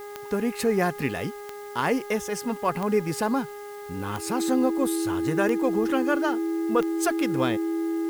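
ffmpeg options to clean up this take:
-af "adeclick=t=4,bandreject=f=410.8:t=h:w=4,bandreject=f=821.6:t=h:w=4,bandreject=f=1.2324k:t=h:w=4,bandreject=f=1.6432k:t=h:w=4,bandreject=f=2.054k:t=h:w=4,bandreject=f=330:w=30,agate=range=-21dB:threshold=-31dB"

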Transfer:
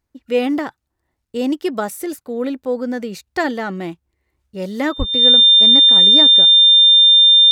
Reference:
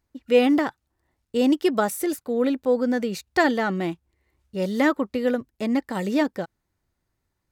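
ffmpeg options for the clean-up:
-filter_complex "[0:a]bandreject=f=3.6k:w=30,asplit=3[a][b][c];[a]afade=t=out:st=4.98:d=0.02[d];[b]highpass=f=140:w=0.5412,highpass=f=140:w=1.3066,afade=t=in:st=4.98:d=0.02,afade=t=out:st=5.1:d=0.02[e];[c]afade=t=in:st=5.1:d=0.02[f];[d][e][f]amix=inputs=3:normalize=0"

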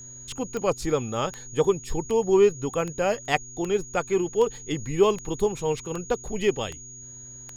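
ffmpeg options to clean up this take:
-af "adeclick=t=4,bandreject=f=126.1:t=h:w=4,bandreject=f=252.2:t=h:w=4,bandreject=f=378.3:t=h:w=4,bandreject=f=6.7k:w=30"

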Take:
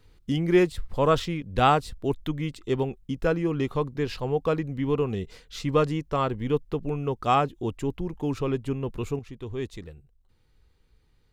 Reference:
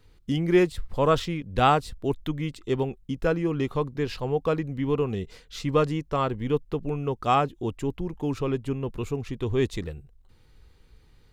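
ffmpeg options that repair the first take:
-af "asetnsamples=n=441:p=0,asendcmd='9.19 volume volume 8dB',volume=0dB"

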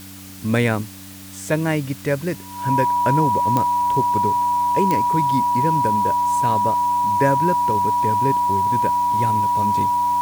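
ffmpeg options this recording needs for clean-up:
-af "adeclick=t=4,bandreject=f=95.7:t=h:w=4,bandreject=f=191.4:t=h:w=4,bandreject=f=287.1:t=h:w=4,bandreject=f=970:w=30,afftdn=nr=29:nf=-37"

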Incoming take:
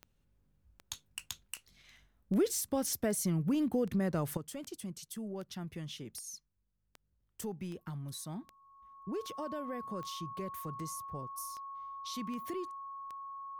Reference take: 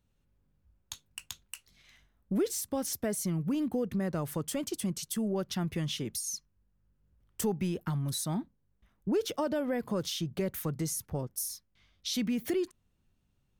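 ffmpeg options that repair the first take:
-af "adeclick=t=4,bandreject=f=1.1k:w=30,asetnsamples=n=441:p=0,asendcmd='4.37 volume volume 9.5dB',volume=0dB"

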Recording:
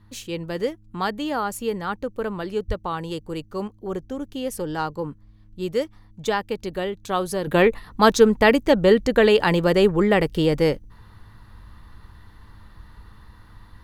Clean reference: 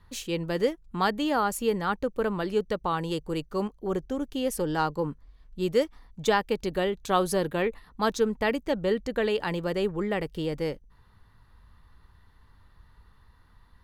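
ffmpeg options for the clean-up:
-filter_complex "[0:a]bandreject=f=104.5:t=h:w=4,bandreject=f=209:t=h:w=4,bandreject=f=313.5:t=h:w=4,asplit=3[a][b][c];[a]afade=t=out:st=2.67:d=0.02[d];[b]highpass=f=140:w=0.5412,highpass=f=140:w=1.3066,afade=t=in:st=2.67:d=0.02,afade=t=out:st=2.79:d=0.02[e];[c]afade=t=in:st=2.79:d=0.02[f];[d][e][f]amix=inputs=3:normalize=0,asetnsamples=n=441:p=0,asendcmd='7.47 volume volume -10.5dB',volume=0dB"

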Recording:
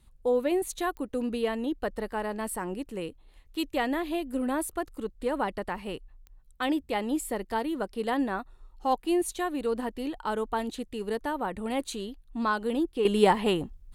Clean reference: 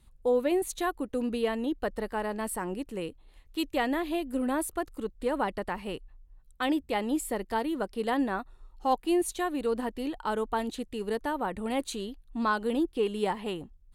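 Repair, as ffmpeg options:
-af "adeclick=t=4,asetnsamples=n=441:p=0,asendcmd='13.05 volume volume -8.5dB',volume=0dB"

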